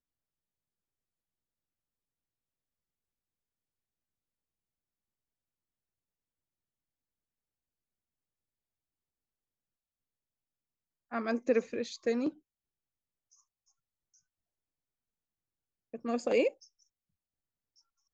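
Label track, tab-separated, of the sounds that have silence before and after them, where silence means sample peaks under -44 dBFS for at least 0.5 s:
11.120000	12.300000	sound
15.940000	16.500000	sound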